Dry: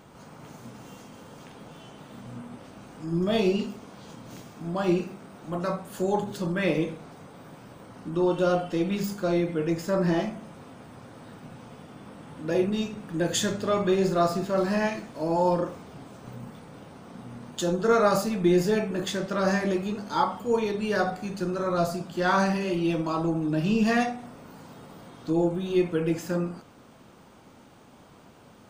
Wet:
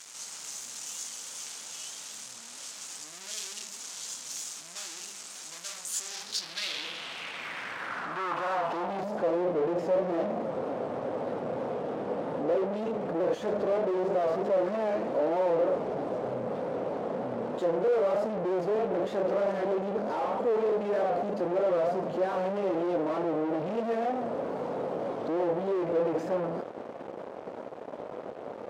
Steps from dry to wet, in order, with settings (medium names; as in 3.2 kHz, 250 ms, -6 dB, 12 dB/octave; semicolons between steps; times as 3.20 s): fuzz box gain 49 dB, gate -52 dBFS; vibrato 3.2 Hz 89 cents; band-pass sweep 6.9 kHz -> 530 Hz, 5.95–9.38 s; trim -7.5 dB